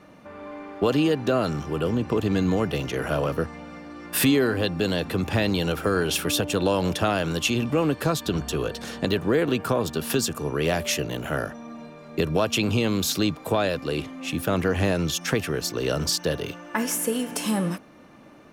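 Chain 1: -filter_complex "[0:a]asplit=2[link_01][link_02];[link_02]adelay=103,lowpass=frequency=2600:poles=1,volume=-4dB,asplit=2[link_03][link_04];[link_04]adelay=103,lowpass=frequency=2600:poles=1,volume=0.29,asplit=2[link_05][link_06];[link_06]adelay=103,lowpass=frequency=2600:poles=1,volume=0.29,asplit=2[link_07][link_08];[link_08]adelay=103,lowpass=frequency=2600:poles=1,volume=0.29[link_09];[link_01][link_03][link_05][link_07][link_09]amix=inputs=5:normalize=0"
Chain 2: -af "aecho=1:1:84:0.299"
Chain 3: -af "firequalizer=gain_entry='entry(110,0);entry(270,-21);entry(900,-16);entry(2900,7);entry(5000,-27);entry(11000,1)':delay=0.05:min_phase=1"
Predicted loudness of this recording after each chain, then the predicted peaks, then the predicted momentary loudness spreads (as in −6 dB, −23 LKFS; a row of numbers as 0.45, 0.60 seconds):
−23.5, −24.5, −29.5 LKFS; −8.0, −9.5, −7.5 dBFS; 7, 7, 11 LU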